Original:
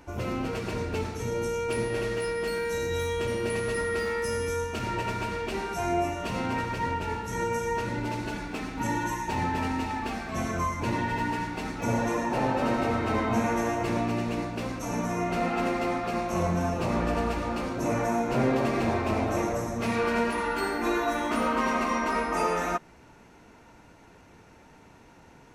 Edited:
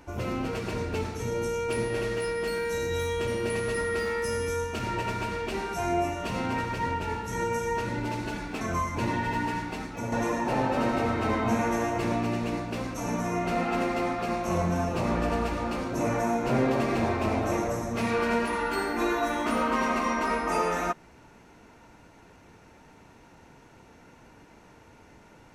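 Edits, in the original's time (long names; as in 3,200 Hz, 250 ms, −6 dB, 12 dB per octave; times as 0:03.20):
0:08.61–0:10.46: remove
0:11.49–0:11.97: fade out, to −8 dB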